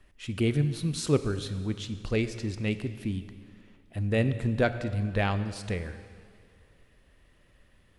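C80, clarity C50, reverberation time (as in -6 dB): 12.5 dB, 11.5 dB, 2.2 s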